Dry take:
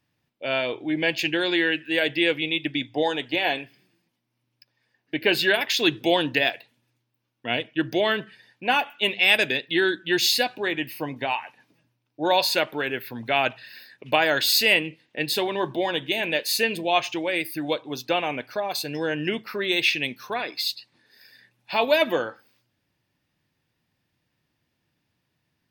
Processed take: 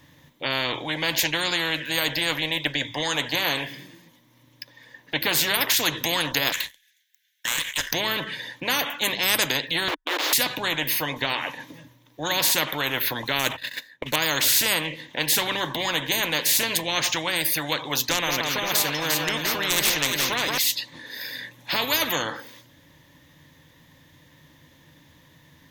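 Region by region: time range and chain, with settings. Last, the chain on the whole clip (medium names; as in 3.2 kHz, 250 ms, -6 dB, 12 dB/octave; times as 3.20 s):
6.52–7.92 s: Chebyshev high-pass 1.5 kHz, order 10 + compression 2.5:1, threshold -41 dBFS + waveshaping leveller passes 3
9.88–10.33 s: send-on-delta sampling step -20 dBFS + brick-wall FIR high-pass 290 Hz + distance through air 430 m
13.39–14.16 s: median filter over 5 samples + gate -45 dBFS, range -22 dB
17.92–20.58 s: overload inside the chain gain 14.5 dB + echo whose repeats swap between lows and highs 175 ms, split 2.2 kHz, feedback 66%, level -6 dB
whole clip: rippled EQ curve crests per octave 1.1, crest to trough 9 dB; spectrum-flattening compressor 4:1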